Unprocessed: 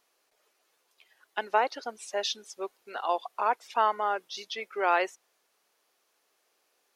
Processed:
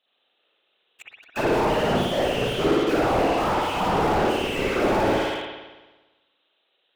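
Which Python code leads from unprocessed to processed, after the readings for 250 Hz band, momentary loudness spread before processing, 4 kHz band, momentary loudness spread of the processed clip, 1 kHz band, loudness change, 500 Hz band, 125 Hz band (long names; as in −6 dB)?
+21.5 dB, 12 LU, +7.5 dB, 7 LU, +4.0 dB, +7.5 dB, +10.5 dB, can't be measured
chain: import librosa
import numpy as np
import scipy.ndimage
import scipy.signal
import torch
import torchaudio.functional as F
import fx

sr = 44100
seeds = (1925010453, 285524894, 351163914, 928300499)

y = fx.freq_compress(x, sr, knee_hz=2500.0, ratio=4.0)
y = scipy.signal.sosfilt(scipy.signal.butter(4, 200.0, 'highpass', fs=sr, output='sos'), y)
y = fx.peak_eq(y, sr, hz=1000.0, db=-7.5, octaves=0.23)
y = fx.hum_notches(y, sr, base_hz=50, count=8)
y = fx.rider(y, sr, range_db=3, speed_s=0.5)
y = fx.leveller(y, sr, passes=5)
y = np.clip(10.0 ** (28.5 / 20.0) * y, -1.0, 1.0) / 10.0 ** (28.5 / 20.0)
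y = fx.whisperise(y, sr, seeds[0])
y = fx.rev_spring(y, sr, rt60_s=1.2, pass_ms=(56,), chirp_ms=75, drr_db=-5.5)
y = fx.slew_limit(y, sr, full_power_hz=34.0)
y = y * 10.0 ** (7.5 / 20.0)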